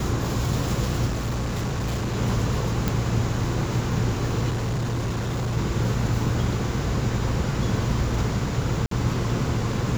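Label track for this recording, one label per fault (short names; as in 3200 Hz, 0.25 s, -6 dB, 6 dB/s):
1.060000	2.160000	clipped -22.5 dBFS
2.880000	2.880000	pop
4.490000	5.580000	clipped -22.5 dBFS
8.860000	8.910000	gap 53 ms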